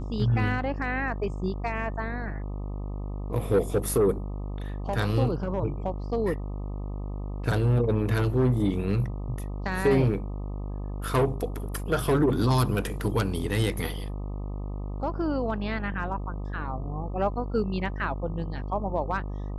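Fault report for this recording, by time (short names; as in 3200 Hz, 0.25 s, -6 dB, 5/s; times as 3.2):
buzz 50 Hz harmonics 25 -33 dBFS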